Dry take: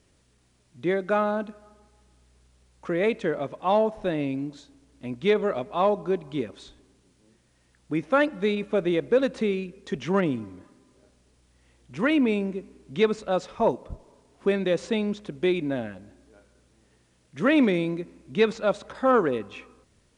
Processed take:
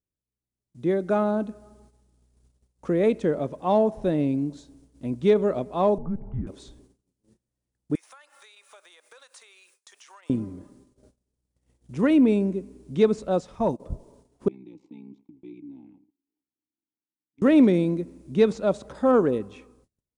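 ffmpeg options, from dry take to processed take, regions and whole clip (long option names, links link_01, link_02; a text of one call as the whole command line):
ffmpeg -i in.wav -filter_complex "[0:a]asettb=1/sr,asplit=3[link_01][link_02][link_03];[link_01]atrim=end=5.984[link_04];[link_02]atrim=start=5.98:end=6.47,asetpts=PTS-STARTPTS,afade=type=in:duration=0.004:curve=qsin,afade=type=out:start_time=0.486:duration=0.004:curve=qsin,afreqshift=-180,acompressor=threshold=-33dB:ratio=2.5:attack=3.2:release=140:knee=1:detection=peak,lowpass=frequency=1600:width=0.5412,lowpass=frequency=1600:width=1.3066[link_05];[link_03]atrim=start=6.466[link_06];[link_04][link_05]acrossfade=duration=0.004:curve1=hsin:curve2=qsin[link_07];[link_07][link_06]acrossfade=duration=0.004:curve1=qsin:curve2=hsin,asettb=1/sr,asplit=3[link_08][link_09][link_10];[link_08]atrim=end=7.954[link_11];[link_09]atrim=start=7.95:end=10.3,asetpts=PTS-STARTPTS,afade=type=in:duration=0.004:curve=qsin,afade=type=out:start_time=2.346:duration=0.004:curve=qsin,highpass=frequency=980:width=0.5412,highpass=frequency=980:width=1.3066,highshelf=frequency=5700:gain=12,acompressor=threshold=-44dB:ratio=10:attack=3.2:release=140:knee=1:detection=peak[link_12];[link_10]atrim=start=10.296[link_13];[link_11][link_12]acrossfade=duration=0.004:curve1=hsin:curve2=qsin[link_14];[link_14][link_13]acrossfade=duration=0.004:curve1=qsin:curve2=hsin,asettb=1/sr,asplit=3[link_15][link_16][link_17];[link_15]atrim=end=13.404[link_18];[link_16]atrim=start=13.4:end=13.8,asetpts=PTS-STARTPTS,afade=type=in:duration=0.004:curve=qsin,afade=type=out:start_time=0.396:duration=0.004:curve=qsin,agate=range=-16dB:threshold=-33dB:ratio=16:release=100:detection=peak,equalizer=frequency=430:width_type=o:width=0.92:gain=-6.5,acompressor=mode=upward:threshold=-33dB:ratio=2.5:attack=3.2:release=140:knee=2.83:detection=peak[link_19];[link_17]atrim=start=13.796[link_20];[link_18][link_19]acrossfade=duration=0.004:curve1=hsin:curve2=qsin[link_21];[link_21][link_20]acrossfade=duration=0.004:curve1=qsin:curve2=hsin,asettb=1/sr,asplit=3[link_22][link_23][link_24];[link_22]atrim=end=14.484[link_25];[link_23]atrim=start=14.48:end=17.42,asetpts=PTS-STARTPTS,afade=type=in:duration=0.004:curve=qsin,afade=type=out:start_time=2.936:duration=0.004:curve=qsin,tremolo=f=63:d=0.824,asplit=3[link_26][link_27][link_28];[link_26]bandpass=frequency=300:width_type=q:width=8,volume=0dB[link_29];[link_27]bandpass=frequency=870:width_type=q:width=8,volume=-6dB[link_30];[link_28]bandpass=frequency=2240:width_type=q:width=8,volume=-9dB[link_31];[link_29][link_30][link_31]amix=inputs=3:normalize=0,acrossover=split=180|3000[link_32][link_33][link_34];[link_33]acompressor=threshold=-55dB:ratio=2.5:attack=3.2:release=140:knee=2.83:detection=peak[link_35];[link_32][link_35][link_34]amix=inputs=3:normalize=0[link_36];[link_24]atrim=start=17.416[link_37];[link_25][link_36]acrossfade=duration=0.004:curve1=hsin:curve2=qsin[link_38];[link_38][link_37]acrossfade=duration=0.004:curve1=qsin:curve2=hsin,agate=range=-24dB:threshold=-58dB:ratio=16:detection=peak,equalizer=frequency=2200:width=0.4:gain=-13,dynaudnorm=framelen=170:gausssize=9:maxgain=9.5dB,volume=-3.5dB" out.wav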